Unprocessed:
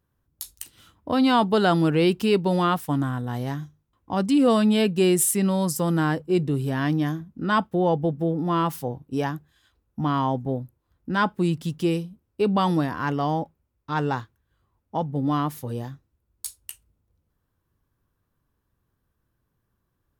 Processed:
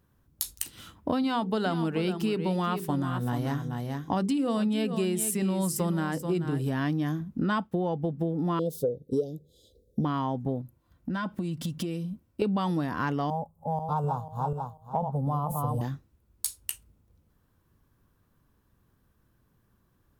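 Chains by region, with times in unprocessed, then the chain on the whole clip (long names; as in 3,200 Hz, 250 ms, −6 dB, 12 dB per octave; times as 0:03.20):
0:01.22–0:06.68: mains-hum notches 50/100/150/200/250/300/350/400/450/500 Hz + single-tap delay 434 ms −11 dB
0:08.59–0:10.05: Chebyshev band-stop filter 520–3,600 Hz, order 4 + flat-topped bell 590 Hz +15 dB 1.3 octaves
0:10.61–0:12.42: notch comb filter 420 Hz + downward compressor 8 to 1, threshold −36 dBFS
0:13.30–0:15.81: feedback delay that plays each chunk backwards 246 ms, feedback 44%, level −5 dB + flat-topped bell 3,000 Hz −15.5 dB 2.3 octaves + phaser with its sweep stopped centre 770 Hz, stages 4
whole clip: parametric band 210 Hz +3.5 dB 0.77 octaves; downward compressor 10 to 1, threshold −31 dBFS; level +6 dB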